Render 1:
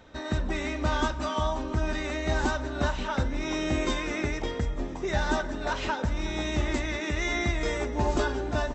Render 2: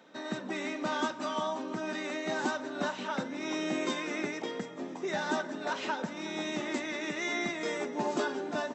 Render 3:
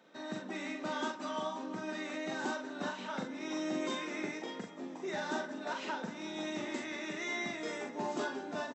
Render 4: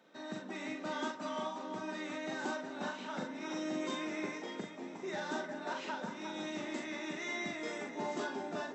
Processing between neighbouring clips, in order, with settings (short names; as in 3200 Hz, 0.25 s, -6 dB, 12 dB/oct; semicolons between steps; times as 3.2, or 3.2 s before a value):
steep high-pass 170 Hz 36 dB/oct; gain -3.5 dB
doubler 42 ms -4 dB; gain -6 dB
echo with dull and thin repeats by turns 0.356 s, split 2000 Hz, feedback 52%, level -7.5 dB; gain -2 dB